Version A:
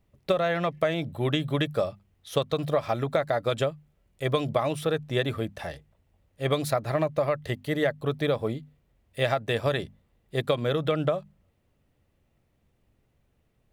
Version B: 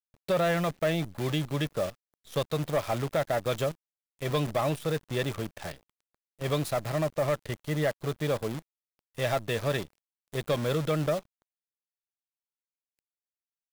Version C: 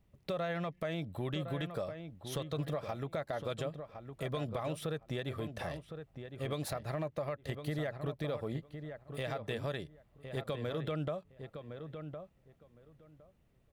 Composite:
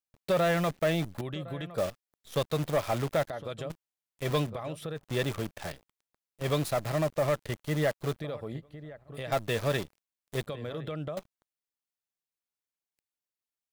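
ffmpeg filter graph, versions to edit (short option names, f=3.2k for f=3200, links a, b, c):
-filter_complex "[2:a]asplit=5[a][b][c][d][e];[1:a]asplit=6[f][g][h][i][j][k];[f]atrim=end=1.212[l];[a]atrim=start=1.208:end=1.782[m];[g]atrim=start=1.778:end=3.302[n];[b]atrim=start=3.298:end=3.702[o];[h]atrim=start=3.698:end=4.51[p];[c]atrim=start=4.41:end=5.05[q];[i]atrim=start=4.95:end=8.202[r];[d]atrim=start=8.198:end=9.322[s];[j]atrim=start=9.318:end=10.472[t];[e]atrim=start=10.468:end=11.172[u];[k]atrim=start=11.168[v];[l][m]acrossfade=d=0.004:c1=hsin:c2=hsin[w];[w][n]acrossfade=d=0.004:c1=hsin:c2=hsin[x];[x][o]acrossfade=d=0.004:c1=hsin:c2=hsin[y];[y][p]acrossfade=d=0.004:c1=hsin:c2=hsin[z];[z][q]acrossfade=d=0.1:c1=tri:c2=tri[aa];[aa][r]acrossfade=d=0.1:c1=tri:c2=tri[ab];[ab][s]acrossfade=d=0.004:c1=hsin:c2=hsin[ac];[ac][t]acrossfade=d=0.004:c1=hsin:c2=hsin[ad];[ad][u]acrossfade=d=0.004:c1=hsin:c2=hsin[ae];[ae][v]acrossfade=d=0.004:c1=hsin:c2=hsin"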